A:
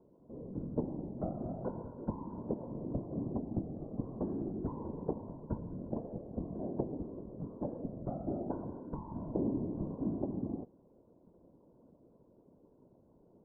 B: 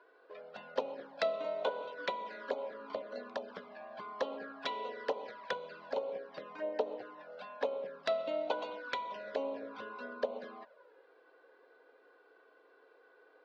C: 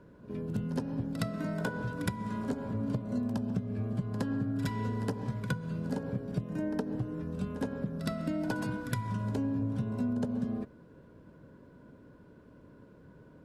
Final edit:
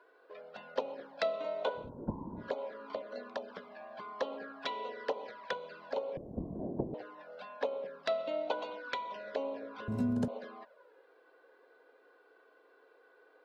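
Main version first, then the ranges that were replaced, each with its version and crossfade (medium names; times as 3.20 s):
B
1.82–2.44 s: from A, crossfade 0.16 s
6.17–6.94 s: from A
9.88–10.28 s: from C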